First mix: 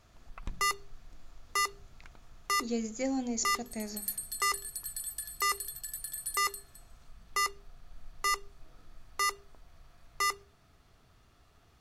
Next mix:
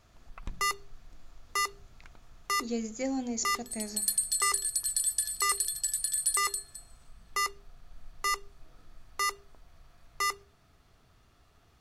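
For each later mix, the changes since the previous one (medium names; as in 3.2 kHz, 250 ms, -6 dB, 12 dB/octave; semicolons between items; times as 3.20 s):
second sound: add frequency weighting ITU-R 468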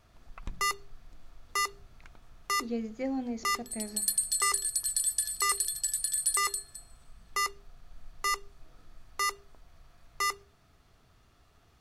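speech: add distance through air 260 m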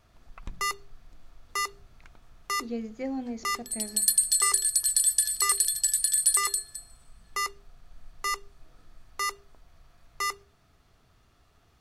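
second sound +6.0 dB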